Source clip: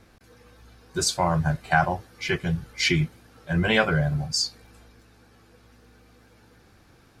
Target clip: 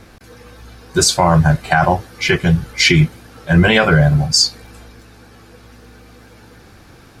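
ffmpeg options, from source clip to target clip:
-af "alimiter=level_in=4.73:limit=0.891:release=50:level=0:latency=1,volume=0.891"

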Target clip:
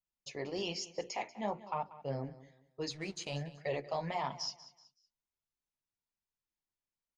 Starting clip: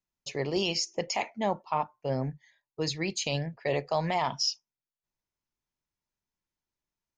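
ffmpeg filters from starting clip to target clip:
-filter_complex "[0:a]flanger=delay=1.4:depth=9.1:regen=-30:speed=1.1:shape=sinusoidal,bandreject=f=60:t=h:w=6,bandreject=f=120:t=h:w=6,bandreject=f=180:t=h:w=6,bandreject=f=240:t=h:w=6,bandreject=f=300:t=h:w=6,bandreject=f=360:t=h:w=6,bandreject=f=420:t=h:w=6,bandreject=f=480:t=h:w=6,asettb=1/sr,asplit=3[s0][s1][s2];[s0]atrim=end=2.904[s3];[s1]atrim=start=2.9:end=3.41,asetpts=PTS-STARTPTS,afade=t=in:d=0.004:c=qsin,afade=t=out:st=0.506:d=0.004:c=qsin,aeval=exprs='sgn(val(0))*max(abs(val(0))-0.00376,0)':c=same[s4];[s2]atrim=start=3.406[s5];[s3][s4]acrossfade=d=0.004:c1=hsin:c2=qsin[s6];[s6][s5]acrossfade=d=0.004:c1=qsin:c2=hsin,aresample=22050,aresample=44100,asplit=2[s7][s8];[s8]aecho=0:1:188|376|564:0.141|0.0396|0.0111[s9];[s7][s9]amix=inputs=2:normalize=0,adynamicequalizer=threshold=0.00398:dfrequency=2300:dqfactor=0.7:tfrequency=2300:tqfactor=0.7:attack=5:release=100:ratio=0.375:range=2:mode=cutabove:tftype=highshelf,volume=0.631"

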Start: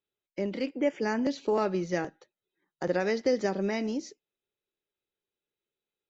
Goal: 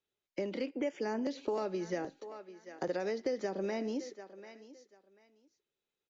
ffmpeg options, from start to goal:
-filter_complex "[0:a]aresample=16000,aresample=44100,acrossover=split=240[s0][s1];[s0]acompressor=threshold=0.00447:ratio=6[s2];[s1]aecho=1:1:740|1480:0.1|0.019[s3];[s2][s3]amix=inputs=2:normalize=0,acrossover=split=910|3400[s4][s5][s6];[s4]acompressor=threshold=0.02:ratio=4[s7];[s5]acompressor=threshold=0.00316:ratio=4[s8];[s6]acompressor=threshold=0.00158:ratio=4[s9];[s7][s8][s9]amix=inputs=3:normalize=0,volume=1.12"

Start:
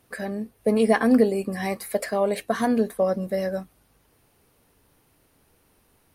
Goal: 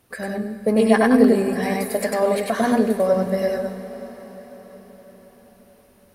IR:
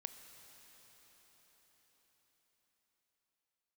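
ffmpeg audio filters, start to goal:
-filter_complex "[0:a]asplit=2[s0][s1];[1:a]atrim=start_sample=2205,adelay=98[s2];[s1][s2]afir=irnorm=-1:irlink=0,volume=1.5[s3];[s0][s3]amix=inputs=2:normalize=0,volume=1.19"

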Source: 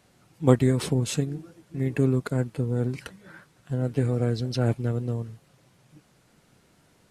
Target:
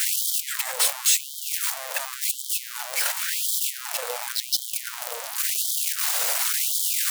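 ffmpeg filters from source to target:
-af "aeval=exprs='val(0)+0.5*0.0841*sgn(val(0))':c=same,crystalizer=i=1.5:c=0,afftfilt=real='re*gte(b*sr/1024,460*pow(3100/460,0.5+0.5*sin(2*PI*0.92*pts/sr)))':imag='im*gte(b*sr/1024,460*pow(3100/460,0.5+0.5*sin(2*PI*0.92*pts/sr)))':win_size=1024:overlap=0.75"

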